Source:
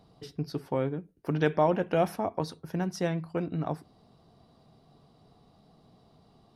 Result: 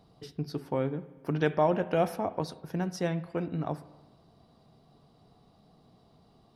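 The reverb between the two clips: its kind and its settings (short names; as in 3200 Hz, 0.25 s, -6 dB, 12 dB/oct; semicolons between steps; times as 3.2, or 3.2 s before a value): spring tank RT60 1.2 s, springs 34/60 ms, chirp 70 ms, DRR 15 dB; gain -1 dB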